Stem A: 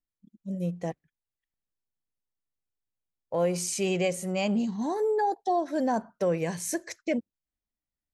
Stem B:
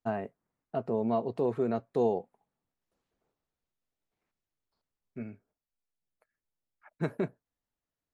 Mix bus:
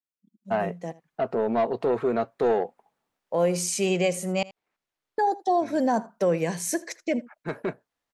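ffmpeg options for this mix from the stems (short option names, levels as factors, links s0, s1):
-filter_complex "[0:a]highpass=f=150:w=0.5412,highpass=f=150:w=1.3066,dynaudnorm=f=220:g=9:m=3.35,volume=0.447,asplit=3[s0][s1][s2];[s0]atrim=end=4.43,asetpts=PTS-STARTPTS,afade=t=out:st=4.426:d=0.004:c=hsin[s3];[s1]atrim=start=4.43:end=5.18,asetpts=PTS-STARTPTS,volume=0[s4];[s2]atrim=start=5.18,asetpts=PTS-STARTPTS,afade=t=in:d=0.004:c=hsin[s5];[s3][s4][s5]concat=n=3:v=0:a=1,asplit=3[s6][s7][s8];[s7]volume=0.1[s9];[1:a]asplit=2[s10][s11];[s11]highpass=f=720:p=1,volume=5.62,asoftclip=type=tanh:threshold=0.158[s12];[s10][s12]amix=inputs=2:normalize=0,lowpass=f=3500:p=1,volume=0.501,adelay=450,volume=1.33[s13];[s8]apad=whole_len=378506[s14];[s13][s14]sidechaincompress=threshold=0.0355:ratio=3:attack=16:release=1260[s15];[s9]aecho=0:1:80:1[s16];[s6][s15][s16]amix=inputs=3:normalize=0"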